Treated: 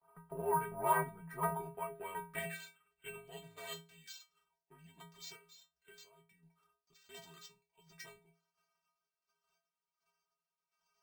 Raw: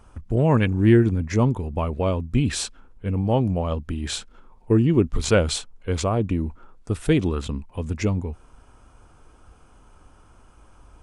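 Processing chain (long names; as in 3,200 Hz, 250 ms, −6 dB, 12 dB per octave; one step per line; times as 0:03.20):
0:03.42–0:03.96: lower of the sound and its delayed copy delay 5.5 ms
de-essing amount 95%
downward expander −42 dBFS
0:05.36–0:06.93: downward compressor 6 to 1, threshold −28 dBFS, peak gain reduction 12 dB
square-wave tremolo 1.4 Hz, depth 60%, duty 45%
sine wavefolder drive 12 dB, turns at −5.5 dBFS
stiff-string resonator 240 Hz, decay 0.38 s, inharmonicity 0.008
band-pass filter sweep 1,000 Hz → 7,500 Hz, 0:01.24–0:04.63
frequency shifter −75 Hz
bad sample-rate conversion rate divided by 4×, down filtered, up hold
level +3.5 dB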